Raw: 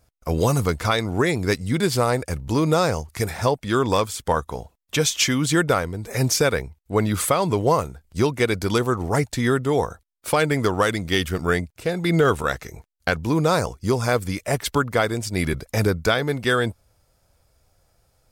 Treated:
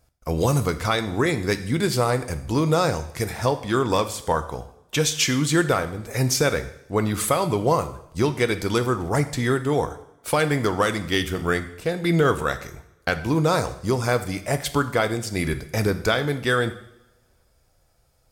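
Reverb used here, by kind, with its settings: two-slope reverb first 0.7 s, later 2 s, from -24 dB, DRR 9 dB; gain -1.5 dB

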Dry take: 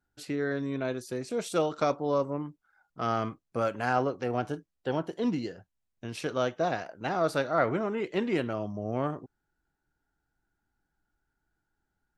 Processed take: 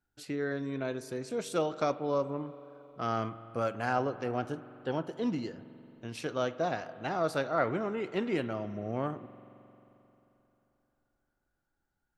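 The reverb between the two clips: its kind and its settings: spring tank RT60 3.4 s, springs 44 ms, chirp 45 ms, DRR 14.5 dB; gain -3 dB

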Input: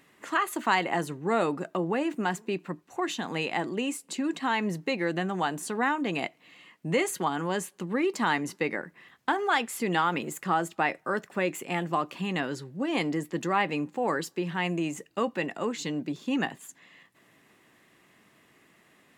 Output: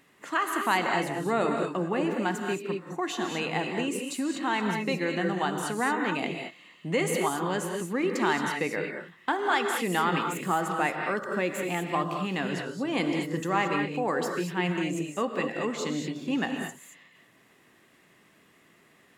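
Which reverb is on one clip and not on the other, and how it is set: non-linear reverb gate 0.25 s rising, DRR 3 dB; gain -1 dB

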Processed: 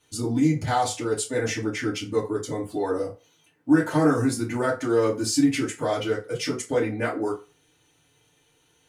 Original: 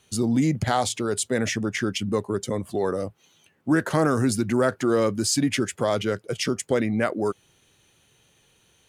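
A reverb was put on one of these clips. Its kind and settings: FDN reverb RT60 0.32 s, low-frequency decay 0.75×, high-frequency decay 0.7×, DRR -7.5 dB; gain -9.5 dB

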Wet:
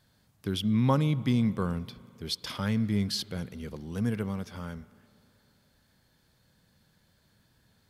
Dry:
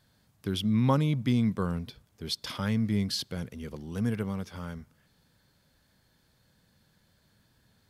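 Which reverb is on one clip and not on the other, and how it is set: spring tank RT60 2.8 s, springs 39/50 ms, chirp 35 ms, DRR 18.5 dB

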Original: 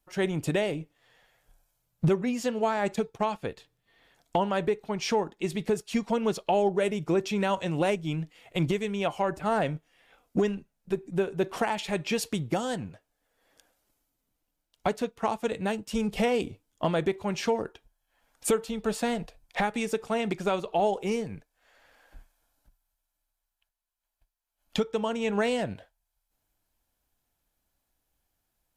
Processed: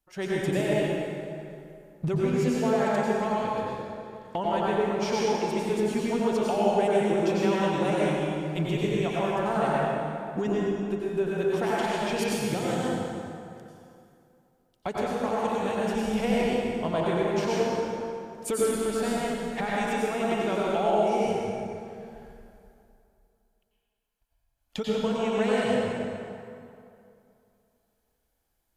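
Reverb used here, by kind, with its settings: plate-style reverb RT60 2.6 s, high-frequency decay 0.65×, pre-delay 80 ms, DRR -6.5 dB; gain -5.5 dB

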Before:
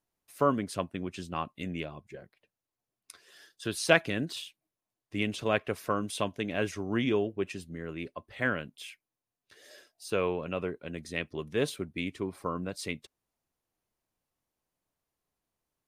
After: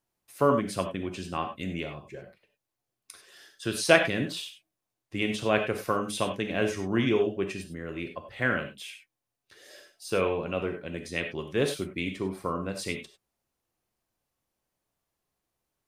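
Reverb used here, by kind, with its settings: non-linear reverb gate 0.12 s flat, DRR 4.5 dB; gain +2 dB

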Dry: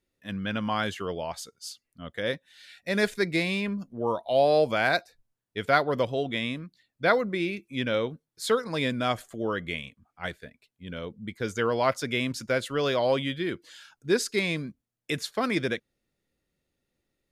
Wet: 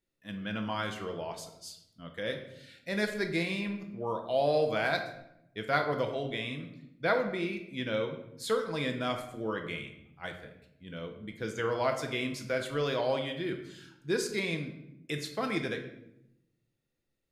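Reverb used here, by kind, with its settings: shoebox room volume 240 m³, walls mixed, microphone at 0.66 m; gain -6.5 dB

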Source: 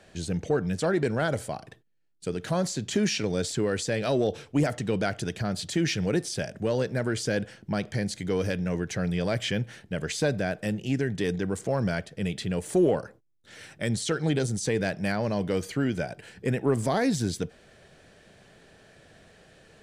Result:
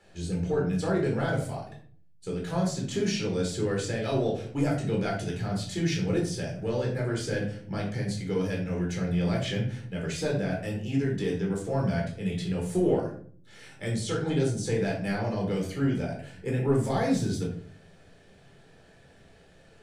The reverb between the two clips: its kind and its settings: shoebox room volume 520 m³, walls furnished, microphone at 4.1 m; gain -9 dB

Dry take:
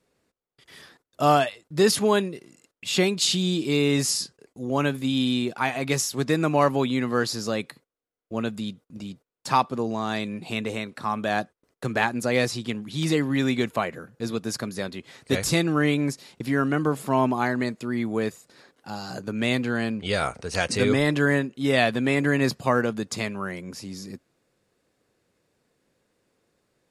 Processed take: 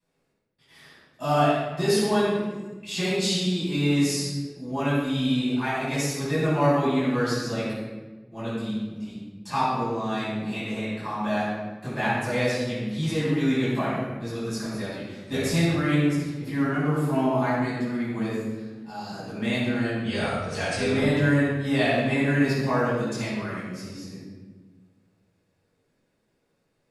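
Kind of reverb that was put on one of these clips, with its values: shoebox room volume 860 m³, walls mixed, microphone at 9.2 m; gain -17 dB

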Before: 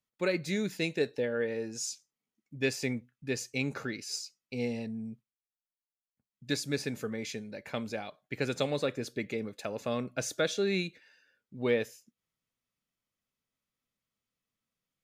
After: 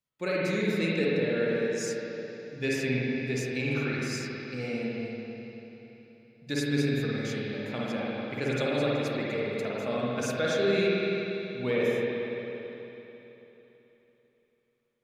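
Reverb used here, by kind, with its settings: spring tank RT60 3.5 s, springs 48/55 ms, chirp 30 ms, DRR -6.5 dB; gain -2.5 dB

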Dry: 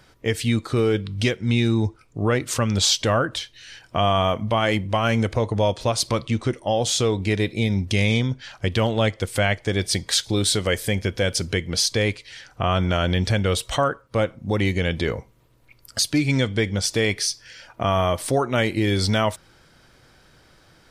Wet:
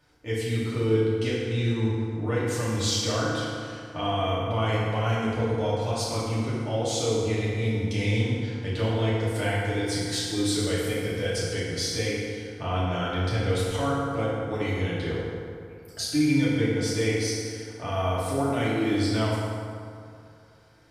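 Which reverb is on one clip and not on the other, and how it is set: FDN reverb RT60 2.4 s, low-frequency decay 1×, high-frequency decay 0.55×, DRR -9 dB; gain -15 dB

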